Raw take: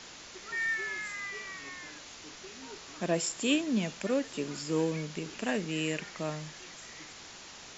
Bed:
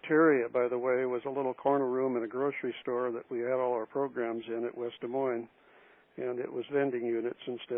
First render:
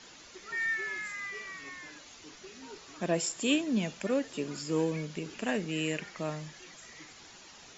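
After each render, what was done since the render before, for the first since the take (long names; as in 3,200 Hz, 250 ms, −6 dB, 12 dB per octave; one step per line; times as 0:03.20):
broadband denoise 8 dB, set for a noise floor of −49 dBFS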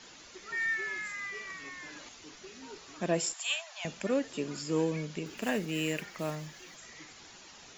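0:01.50–0:02.09: multiband upward and downward compressor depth 100%
0:03.33–0:03.85: Butterworth high-pass 660 Hz 72 dB per octave
0:05.26–0:06.77: one scale factor per block 5 bits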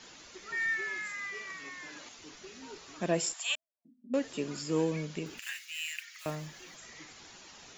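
0:00.81–0:02.19: low-shelf EQ 79 Hz −11.5 dB
0:03.55–0:04.14: flat-topped band-pass 250 Hz, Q 7.9
0:05.39–0:06.26: inverse Chebyshev high-pass filter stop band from 300 Hz, stop band 80 dB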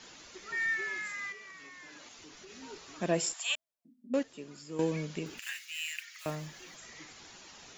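0:01.32–0:02.50: downward compressor 3 to 1, threshold −48 dBFS
0:04.23–0:04.79: clip gain −10.5 dB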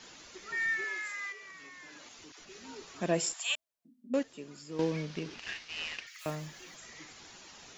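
0:00.84–0:01.43: high-pass filter 320 Hz 24 dB per octave
0:02.32–0:03.00: all-pass dispersion lows, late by 74 ms, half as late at 660 Hz
0:04.71–0:06.07: variable-slope delta modulation 32 kbit/s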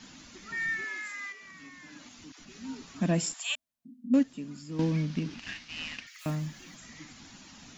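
low shelf with overshoot 320 Hz +7 dB, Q 3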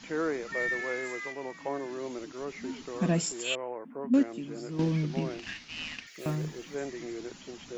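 mix in bed −7 dB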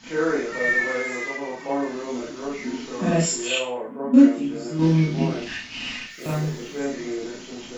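four-comb reverb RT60 0.35 s, combs from 25 ms, DRR −7.5 dB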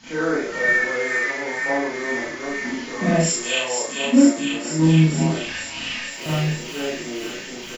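double-tracking delay 38 ms −2.5 dB
delay with a high-pass on its return 468 ms, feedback 75%, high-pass 1,500 Hz, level −3.5 dB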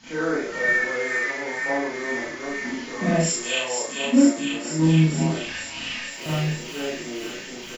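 level −2.5 dB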